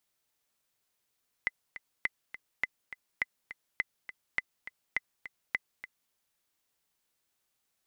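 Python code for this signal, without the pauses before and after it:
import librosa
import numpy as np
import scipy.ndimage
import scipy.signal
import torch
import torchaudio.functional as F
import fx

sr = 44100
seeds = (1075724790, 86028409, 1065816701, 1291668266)

y = fx.click_track(sr, bpm=206, beats=2, bars=8, hz=2030.0, accent_db=13.5, level_db=-15.0)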